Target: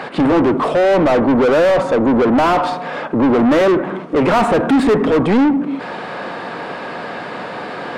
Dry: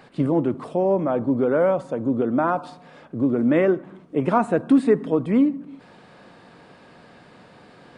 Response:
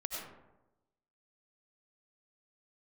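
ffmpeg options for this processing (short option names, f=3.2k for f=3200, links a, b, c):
-filter_complex "[0:a]asplit=2[a][b];[b]highpass=f=720:p=1,volume=33dB,asoftclip=type=tanh:threshold=-6.5dB[c];[a][c]amix=inputs=2:normalize=0,lowpass=f=1.5k:p=1,volume=-6dB,volume=1dB"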